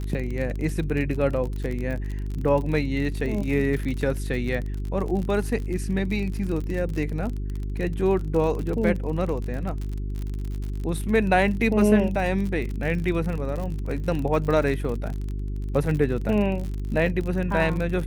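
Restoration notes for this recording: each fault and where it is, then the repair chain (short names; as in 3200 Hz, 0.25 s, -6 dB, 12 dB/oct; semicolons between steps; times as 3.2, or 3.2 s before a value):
crackle 49/s -29 dBFS
hum 50 Hz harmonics 8 -29 dBFS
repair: de-click; de-hum 50 Hz, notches 8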